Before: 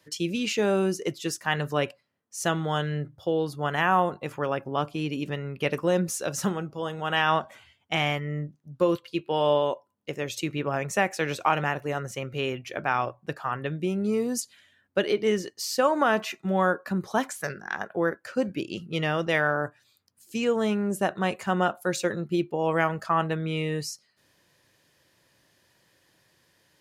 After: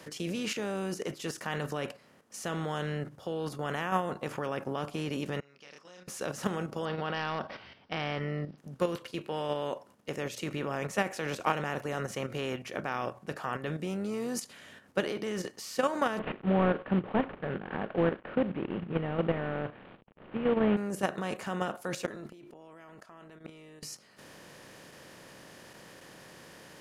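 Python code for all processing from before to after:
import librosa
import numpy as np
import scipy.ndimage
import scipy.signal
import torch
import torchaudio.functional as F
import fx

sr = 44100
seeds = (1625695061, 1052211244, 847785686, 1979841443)

y = fx.chain(x, sr, fx.bandpass_q(hz=5400.0, q=8.1),
    fx.air_absorb(metres=140.0),
    fx.doubler(ms=28.0, db=-2), at=(5.4, 6.08))
y = fx.chain(y, sr, fx.clip_hard(threshold_db=-15.5),
    fx.resample_bad(factor=4, down='none', up='filtered'), at=(6.85, 8.58))
y = fx.chain(y, sr, fx.cvsd(bps=16000),
    fx.tilt_shelf(db=8.0, hz=970.0), at=(16.19, 20.77))
y = fx.chain(y, sr, fx.comb(ms=3.0, depth=0.56),
    fx.gate_flip(shuts_db=-25.0, range_db=-34),
    fx.sustainer(db_per_s=67.0), at=(22.06, 23.83))
y = fx.bin_compress(y, sr, power=0.6)
y = fx.level_steps(y, sr, step_db=9)
y = F.gain(torch.from_numpy(y), -6.5).numpy()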